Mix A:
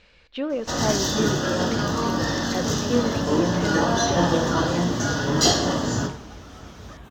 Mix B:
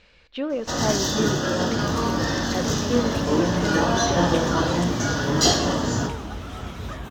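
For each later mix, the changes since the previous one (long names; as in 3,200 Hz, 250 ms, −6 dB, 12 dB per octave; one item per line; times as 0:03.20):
second sound +9.0 dB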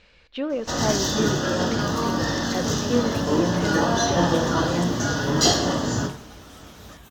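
second sound: add first-order pre-emphasis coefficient 0.8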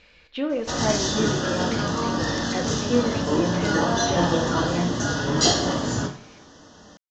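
speech: send +11.0 dB
second sound: muted
master: add elliptic low-pass filter 7,400 Hz, stop band 60 dB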